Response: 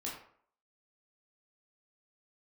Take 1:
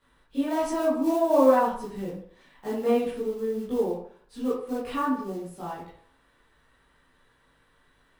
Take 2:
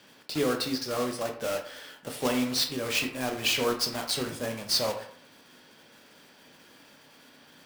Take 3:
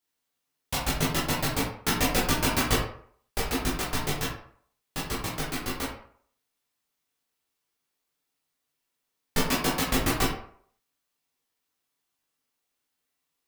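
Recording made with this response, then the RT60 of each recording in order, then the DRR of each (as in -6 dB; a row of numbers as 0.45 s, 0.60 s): 3; 0.60 s, 0.60 s, 0.60 s; -10.0 dB, 3.5 dB, -5.0 dB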